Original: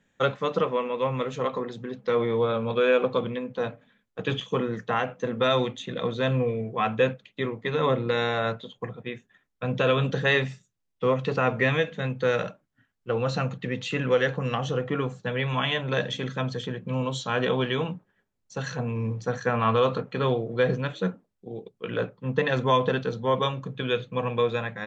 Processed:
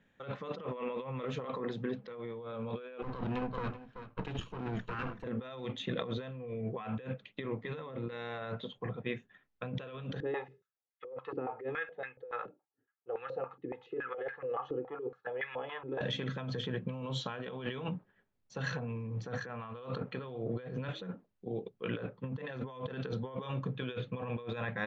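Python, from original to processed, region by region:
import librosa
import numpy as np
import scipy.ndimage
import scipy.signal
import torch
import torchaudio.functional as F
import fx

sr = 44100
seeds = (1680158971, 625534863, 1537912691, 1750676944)

y = fx.chain(x, sr, fx.lower_of_two(delay_ms=0.73),
    fx.high_shelf(hz=2900.0, db=-7.5),
    fx.echo_single(ms=381, db=-14.5), at=(3.02, 5.24))
y = fx.chain(y, sr, fx.comb(ms=2.4, depth=0.58),
    fx.filter_held_bandpass(hz=7.1, low_hz=310.0, high_hz=1800.0), at=(10.2, 16.01))
y = scipy.signal.sosfilt(scipy.signal.butter(2, 3700.0, 'lowpass', fs=sr, output='sos'), y)
y = fx.over_compress(y, sr, threshold_db=-33.0, ratio=-1.0)
y = y * librosa.db_to_amplitude(-6.0)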